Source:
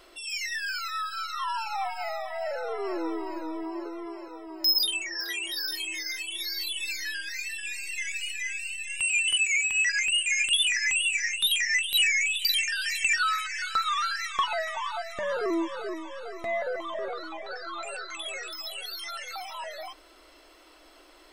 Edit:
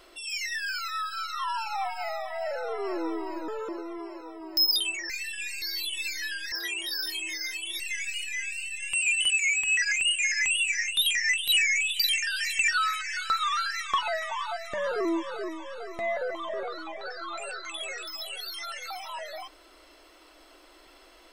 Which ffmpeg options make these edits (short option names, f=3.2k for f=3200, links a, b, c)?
-filter_complex "[0:a]asplit=8[a][b][c][d][e][f][g][h];[a]atrim=end=3.484[i];[b]atrim=start=3.48:end=3.76,asetpts=PTS-STARTPTS,asetrate=59535,aresample=44100[j];[c]atrim=start=3.756:end=5.172[k];[d]atrim=start=7.348:end=7.872[l];[e]atrim=start=6.448:end=7.352[m];[f]atrim=start=5.168:end=6.452[n];[g]atrim=start=7.868:end=10.392[o];[h]atrim=start=10.768[p];[i][j]acrossfade=d=0.004:c1=hsin:c2=hsin[q];[q][k]acrossfade=d=0.004:c1=hsin:c2=hsin[r];[r][l]acrossfade=d=0.004:c1=hsin:c2=hsin[s];[s][m]acrossfade=d=0.004:c1=hsin:c2=hsin[t];[t][n]acrossfade=d=0.004:c1=hsin:c2=hsin[u];[u][o]acrossfade=d=0.004:c1=hsin:c2=hsin[v];[v][p]acrossfade=d=0.004:c1=hsin:c2=hsin"